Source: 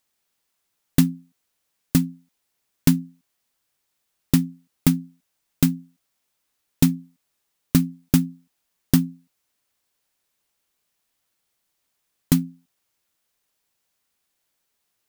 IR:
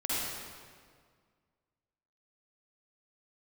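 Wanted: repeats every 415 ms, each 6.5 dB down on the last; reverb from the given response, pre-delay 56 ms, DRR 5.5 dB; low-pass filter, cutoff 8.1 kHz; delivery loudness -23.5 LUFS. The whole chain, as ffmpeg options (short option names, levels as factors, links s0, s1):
-filter_complex "[0:a]lowpass=8100,aecho=1:1:415|830|1245|1660|2075|2490:0.473|0.222|0.105|0.0491|0.0231|0.0109,asplit=2[s0][s1];[1:a]atrim=start_sample=2205,adelay=56[s2];[s1][s2]afir=irnorm=-1:irlink=0,volume=0.224[s3];[s0][s3]amix=inputs=2:normalize=0,volume=1.12"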